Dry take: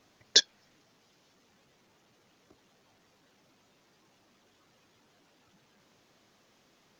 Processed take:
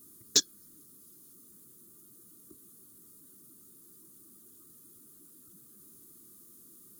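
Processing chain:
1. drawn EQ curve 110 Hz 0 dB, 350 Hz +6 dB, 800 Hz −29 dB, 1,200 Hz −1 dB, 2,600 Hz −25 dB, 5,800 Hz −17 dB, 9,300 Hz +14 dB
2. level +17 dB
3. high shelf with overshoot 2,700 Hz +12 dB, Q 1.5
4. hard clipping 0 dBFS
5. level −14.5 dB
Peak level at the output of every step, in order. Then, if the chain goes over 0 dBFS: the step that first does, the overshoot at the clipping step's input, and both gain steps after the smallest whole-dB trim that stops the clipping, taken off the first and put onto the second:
−20.5, −3.5, +9.5, 0.0, −14.5 dBFS
step 3, 9.5 dB
step 2 +7 dB, step 5 −4.5 dB

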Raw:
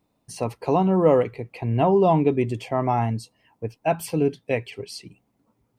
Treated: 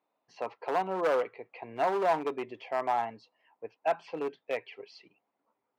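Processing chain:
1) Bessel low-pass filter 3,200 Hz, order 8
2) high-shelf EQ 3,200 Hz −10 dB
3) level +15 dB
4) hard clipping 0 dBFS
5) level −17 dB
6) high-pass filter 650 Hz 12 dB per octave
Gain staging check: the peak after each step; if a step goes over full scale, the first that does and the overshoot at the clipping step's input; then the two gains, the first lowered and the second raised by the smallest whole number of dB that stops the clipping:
−6.0, −6.5, +8.5, 0.0, −17.0, −15.5 dBFS
step 3, 8.5 dB
step 3 +6 dB, step 5 −8 dB

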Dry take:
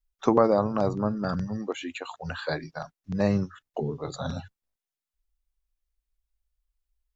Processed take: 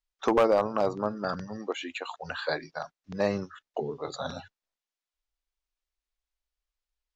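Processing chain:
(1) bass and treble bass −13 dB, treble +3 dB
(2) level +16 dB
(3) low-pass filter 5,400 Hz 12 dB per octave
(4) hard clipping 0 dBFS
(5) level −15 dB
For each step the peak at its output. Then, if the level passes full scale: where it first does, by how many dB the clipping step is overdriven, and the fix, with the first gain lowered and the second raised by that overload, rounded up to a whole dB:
−7.5, +8.5, +8.5, 0.0, −15.0 dBFS
step 2, 8.5 dB
step 2 +7 dB, step 5 −6 dB

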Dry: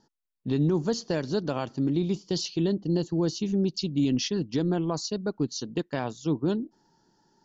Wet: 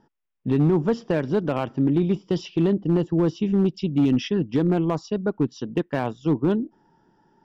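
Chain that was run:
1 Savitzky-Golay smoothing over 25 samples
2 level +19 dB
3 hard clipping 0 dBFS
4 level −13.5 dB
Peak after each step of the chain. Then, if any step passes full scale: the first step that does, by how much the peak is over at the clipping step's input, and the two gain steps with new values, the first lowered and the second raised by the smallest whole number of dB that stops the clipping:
−15.0, +4.0, 0.0, −13.5 dBFS
step 2, 4.0 dB
step 2 +15 dB, step 4 −9.5 dB

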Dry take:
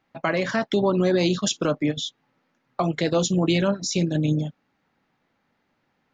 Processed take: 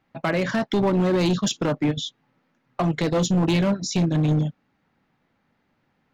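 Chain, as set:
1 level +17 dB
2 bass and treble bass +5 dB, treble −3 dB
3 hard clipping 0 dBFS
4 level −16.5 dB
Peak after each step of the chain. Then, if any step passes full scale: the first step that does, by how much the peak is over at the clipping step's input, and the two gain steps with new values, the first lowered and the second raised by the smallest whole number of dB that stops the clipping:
+5.5, +7.5, 0.0, −16.5 dBFS
step 1, 7.5 dB
step 1 +9 dB, step 4 −8.5 dB

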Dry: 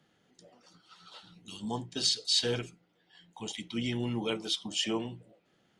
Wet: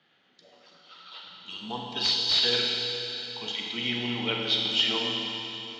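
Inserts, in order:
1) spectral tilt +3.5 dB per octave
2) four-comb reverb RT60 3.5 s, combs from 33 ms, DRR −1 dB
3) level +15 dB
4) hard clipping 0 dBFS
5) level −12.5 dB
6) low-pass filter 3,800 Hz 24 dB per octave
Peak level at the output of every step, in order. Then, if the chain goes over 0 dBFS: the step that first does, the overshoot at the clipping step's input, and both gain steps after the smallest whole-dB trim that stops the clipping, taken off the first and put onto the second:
−6.5, −6.5, +8.5, 0.0, −12.5, −11.5 dBFS
step 3, 8.5 dB
step 3 +6 dB, step 5 −3.5 dB

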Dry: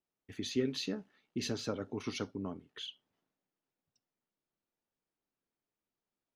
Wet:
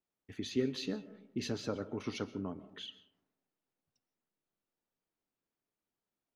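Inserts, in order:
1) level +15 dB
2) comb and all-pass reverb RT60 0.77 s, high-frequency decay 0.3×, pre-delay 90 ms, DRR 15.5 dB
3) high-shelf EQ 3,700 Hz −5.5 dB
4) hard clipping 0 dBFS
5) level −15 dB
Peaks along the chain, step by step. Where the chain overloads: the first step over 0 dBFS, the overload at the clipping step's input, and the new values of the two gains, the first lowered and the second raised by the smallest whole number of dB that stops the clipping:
−4.5, −4.5, −4.5, −4.5, −19.5 dBFS
no step passes full scale

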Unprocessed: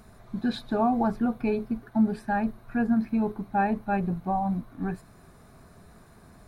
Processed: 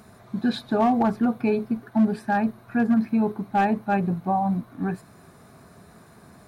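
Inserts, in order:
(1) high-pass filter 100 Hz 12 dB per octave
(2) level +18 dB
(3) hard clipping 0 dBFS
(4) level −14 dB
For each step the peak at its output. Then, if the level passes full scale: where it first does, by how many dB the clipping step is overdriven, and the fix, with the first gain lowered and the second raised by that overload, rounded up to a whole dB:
−13.0, +5.0, 0.0, −14.0 dBFS
step 2, 5.0 dB
step 2 +13 dB, step 4 −9 dB

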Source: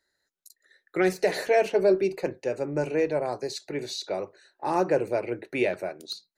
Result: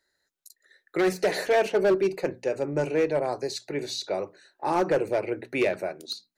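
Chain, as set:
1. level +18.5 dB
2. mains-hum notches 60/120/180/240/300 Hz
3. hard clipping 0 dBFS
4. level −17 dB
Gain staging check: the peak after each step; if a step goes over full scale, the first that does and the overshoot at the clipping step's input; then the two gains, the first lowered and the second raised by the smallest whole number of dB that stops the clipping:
+7.5, +7.0, 0.0, −17.0 dBFS
step 1, 7.0 dB
step 1 +11.5 dB, step 4 −10 dB

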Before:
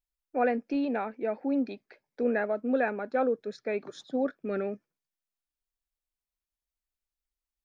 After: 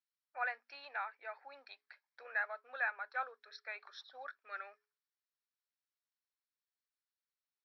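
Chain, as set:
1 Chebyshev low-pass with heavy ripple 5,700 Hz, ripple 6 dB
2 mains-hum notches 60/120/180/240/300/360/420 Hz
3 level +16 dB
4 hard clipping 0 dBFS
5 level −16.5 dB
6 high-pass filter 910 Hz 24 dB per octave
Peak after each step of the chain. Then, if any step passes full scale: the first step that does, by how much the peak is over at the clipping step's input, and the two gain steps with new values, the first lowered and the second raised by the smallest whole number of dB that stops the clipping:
−19.0, −19.0, −3.0, −3.0, −19.5, −23.5 dBFS
no step passes full scale

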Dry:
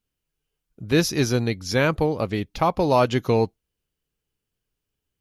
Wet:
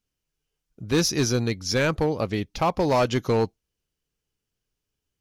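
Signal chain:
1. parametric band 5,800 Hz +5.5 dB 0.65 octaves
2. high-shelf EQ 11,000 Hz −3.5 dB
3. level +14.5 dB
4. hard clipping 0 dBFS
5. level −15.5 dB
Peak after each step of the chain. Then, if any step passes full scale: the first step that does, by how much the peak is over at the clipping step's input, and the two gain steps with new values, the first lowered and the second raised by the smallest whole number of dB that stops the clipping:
−7.0, −7.0, +7.5, 0.0, −15.5 dBFS
step 3, 7.5 dB
step 3 +6.5 dB, step 5 −7.5 dB

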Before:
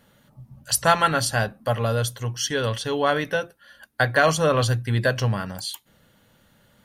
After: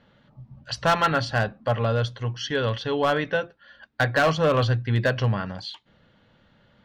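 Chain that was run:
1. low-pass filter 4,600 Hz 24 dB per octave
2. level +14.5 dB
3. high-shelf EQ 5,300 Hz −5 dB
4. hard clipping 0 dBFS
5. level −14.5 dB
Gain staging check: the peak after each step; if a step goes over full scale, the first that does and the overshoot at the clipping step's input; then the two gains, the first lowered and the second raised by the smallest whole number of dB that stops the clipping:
−4.5, +10.0, +9.5, 0.0, −14.5 dBFS
step 2, 9.5 dB
step 2 +4.5 dB, step 5 −4.5 dB

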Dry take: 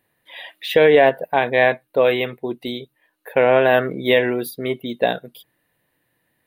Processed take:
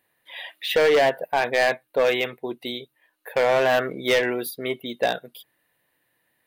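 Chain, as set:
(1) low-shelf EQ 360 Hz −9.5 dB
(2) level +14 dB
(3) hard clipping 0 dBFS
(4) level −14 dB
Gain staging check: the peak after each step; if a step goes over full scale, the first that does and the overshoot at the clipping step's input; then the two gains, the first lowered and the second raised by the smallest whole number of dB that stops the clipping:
−4.0, +10.0, 0.0, −14.0 dBFS
step 2, 10.0 dB
step 2 +4 dB, step 4 −4 dB

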